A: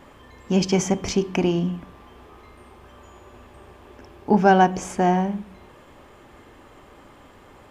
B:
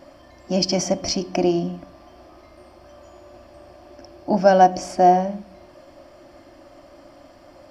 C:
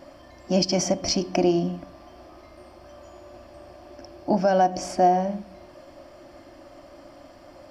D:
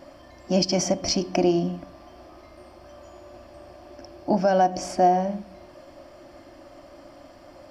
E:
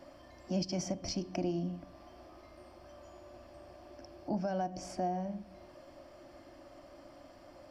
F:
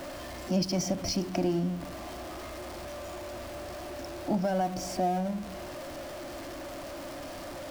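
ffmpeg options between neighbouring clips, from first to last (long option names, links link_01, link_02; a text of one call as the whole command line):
ffmpeg -i in.wav -af "superequalizer=6b=2.24:7b=0.501:8b=3.98:14b=3.98,volume=-3.5dB" out.wav
ffmpeg -i in.wav -af "alimiter=limit=-10dB:level=0:latency=1:release=227" out.wav
ffmpeg -i in.wav -af anull out.wav
ffmpeg -i in.wav -filter_complex "[0:a]acrossover=split=200[link_01][link_02];[link_02]acompressor=threshold=-43dB:ratio=1.5[link_03];[link_01][link_03]amix=inputs=2:normalize=0,volume=-7dB" out.wav
ffmpeg -i in.wav -af "aeval=exprs='val(0)+0.5*0.0075*sgn(val(0))':channel_layout=same,volume=5dB" out.wav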